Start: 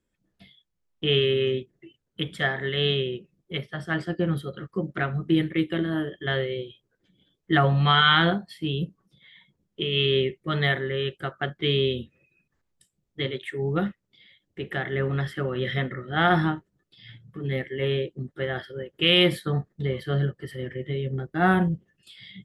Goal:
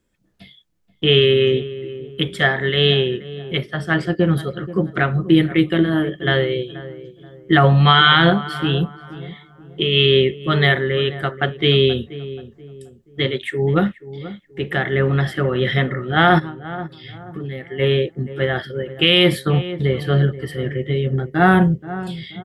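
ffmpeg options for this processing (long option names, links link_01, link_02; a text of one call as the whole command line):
ffmpeg -i in.wav -filter_complex "[0:a]asplit=3[link_01][link_02][link_03];[link_01]afade=type=out:start_time=16.38:duration=0.02[link_04];[link_02]acompressor=threshold=-34dB:ratio=16,afade=type=in:start_time=16.38:duration=0.02,afade=type=out:start_time=17.78:duration=0.02[link_05];[link_03]afade=type=in:start_time=17.78:duration=0.02[link_06];[link_04][link_05][link_06]amix=inputs=3:normalize=0,asplit=2[link_07][link_08];[link_08]adelay=480,lowpass=frequency=1100:poles=1,volume=-14.5dB,asplit=2[link_09][link_10];[link_10]adelay=480,lowpass=frequency=1100:poles=1,volume=0.39,asplit=2[link_11][link_12];[link_12]adelay=480,lowpass=frequency=1100:poles=1,volume=0.39,asplit=2[link_13][link_14];[link_14]adelay=480,lowpass=frequency=1100:poles=1,volume=0.39[link_15];[link_07][link_09][link_11][link_13][link_15]amix=inputs=5:normalize=0,alimiter=level_in=9.5dB:limit=-1dB:release=50:level=0:latency=1,volume=-1dB" out.wav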